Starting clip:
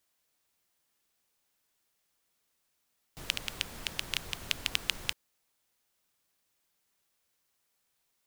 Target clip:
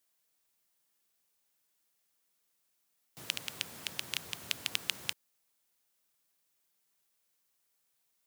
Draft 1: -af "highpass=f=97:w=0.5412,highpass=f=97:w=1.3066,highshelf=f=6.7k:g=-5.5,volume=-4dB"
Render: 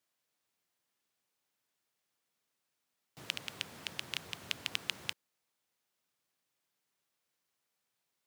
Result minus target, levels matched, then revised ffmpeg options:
8000 Hz band -4.0 dB
-af "highpass=f=97:w=0.5412,highpass=f=97:w=1.3066,highshelf=f=6.7k:g=6,volume=-4dB"

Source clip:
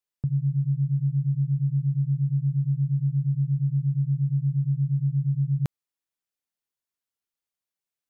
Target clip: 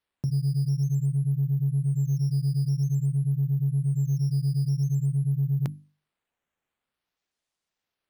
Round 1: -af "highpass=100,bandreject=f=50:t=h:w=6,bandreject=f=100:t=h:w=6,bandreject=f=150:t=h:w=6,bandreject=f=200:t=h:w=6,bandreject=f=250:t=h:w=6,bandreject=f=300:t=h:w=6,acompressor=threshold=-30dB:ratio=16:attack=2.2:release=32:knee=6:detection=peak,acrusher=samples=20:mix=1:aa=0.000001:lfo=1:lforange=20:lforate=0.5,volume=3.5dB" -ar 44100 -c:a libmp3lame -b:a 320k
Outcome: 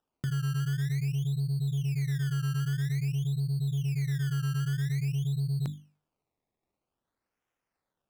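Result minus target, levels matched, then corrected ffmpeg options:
decimation with a swept rate: distortion +11 dB; compressor: peak gain reduction +5.5 dB
-af "highpass=100,bandreject=f=50:t=h:w=6,bandreject=f=100:t=h:w=6,bandreject=f=150:t=h:w=6,bandreject=f=200:t=h:w=6,bandreject=f=250:t=h:w=6,bandreject=f=300:t=h:w=6,acompressor=threshold=-23.5dB:ratio=16:attack=2.2:release=32:knee=6:detection=peak,acrusher=samples=6:mix=1:aa=0.000001:lfo=1:lforange=6:lforate=0.5,volume=3.5dB" -ar 44100 -c:a libmp3lame -b:a 320k

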